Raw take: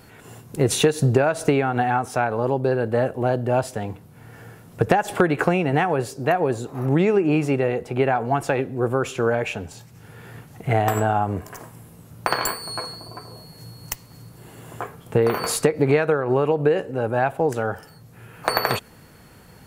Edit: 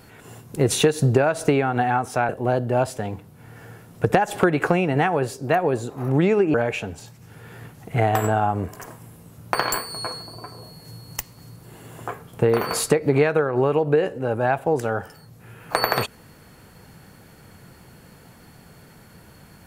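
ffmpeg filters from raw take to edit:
-filter_complex "[0:a]asplit=3[s0][s1][s2];[s0]atrim=end=2.292[s3];[s1]atrim=start=3.058:end=7.312[s4];[s2]atrim=start=9.268[s5];[s3][s4]acrossfade=d=0.004:c1=hsin:c2=hsin[s6];[s6][s5]acrossfade=d=0.004:c1=hsin:c2=hsin"

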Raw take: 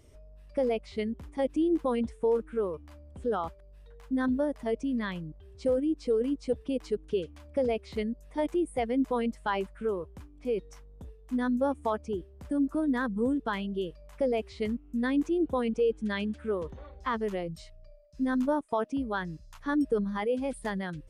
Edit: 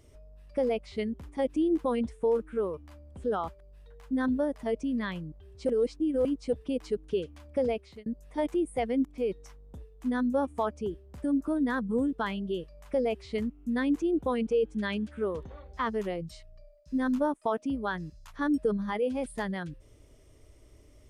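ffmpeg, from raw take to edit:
-filter_complex "[0:a]asplit=5[s0][s1][s2][s3][s4];[s0]atrim=end=5.692[s5];[s1]atrim=start=5.688:end=6.252,asetpts=PTS-STARTPTS,areverse[s6];[s2]atrim=start=6.248:end=8.06,asetpts=PTS-STARTPTS,afade=t=out:st=1.432:d=0.38[s7];[s3]atrim=start=8.06:end=9.052,asetpts=PTS-STARTPTS,afade=t=in:d=0.004:c=hsin[s8];[s4]atrim=start=10.318[s9];[s5][s6]acrossfade=d=0.004:c1=hsin:c2=hsin[s10];[s7][s8]concat=n=2:v=0:a=1[s11];[s10][s11]acrossfade=d=0.004:c1=hsin:c2=hsin[s12];[s12][s9]acrossfade=d=0.004:c1=hsin:c2=hsin"

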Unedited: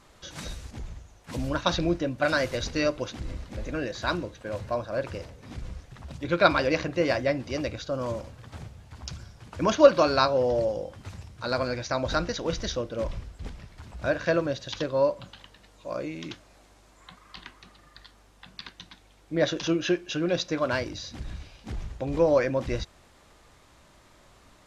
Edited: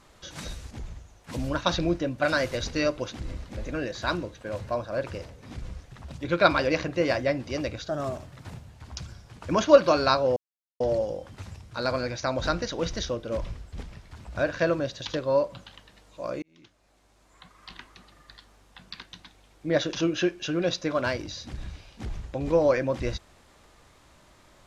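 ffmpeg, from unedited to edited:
-filter_complex "[0:a]asplit=5[s0][s1][s2][s3][s4];[s0]atrim=end=7.884[s5];[s1]atrim=start=7.88:end=8.81,asetpts=PTS-STARTPTS,asetrate=49833,aresample=44100[s6];[s2]atrim=start=8.806:end=10.47,asetpts=PTS-STARTPTS,afade=t=out:st=1.66:d=0.004:c=hsin,apad=pad_dur=0.44[s7];[s3]atrim=start=10.47:end=16.09,asetpts=PTS-STARTPTS,afade=t=in:d=0.004:c=hsin,afade=t=out:st=5.616:d=0.004:c=hsin[s8];[s4]atrim=start=16.09,asetpts=PTS-STARTPTS,afade=t=in:d=1.34[s9];[s5][s6]acrossfade=d=0.004:c1=hsin:c2=hsin[s10];[s7][s8][s9]concat=n=3:v=0:a=1[s11];[s10][s11]acrossfade=d=0.004:c1=hsin:c2=hsin"

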